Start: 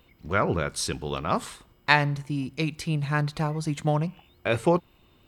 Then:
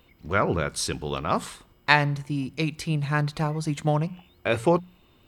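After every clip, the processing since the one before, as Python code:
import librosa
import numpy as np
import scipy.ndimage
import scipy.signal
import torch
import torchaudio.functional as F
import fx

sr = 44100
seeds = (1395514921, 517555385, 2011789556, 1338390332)

y = fx.hum_notches(x, sr, base_hz=60, count=3)
y = y * librosa.db_to_amplitude(1.0)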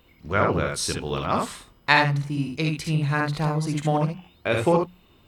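y = fx.room_early_taps(x, sr, ms=(51, 71), db=(-7.0, -4.5))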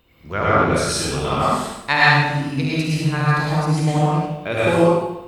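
y = fx.rev_plate(x, sr, seeds[0], rt60_s=0.87, hf_ratio=0.9, predelay_ms=90, drr_db=-7.0)
y = y * librosa.db_to_amplitude(-2.0)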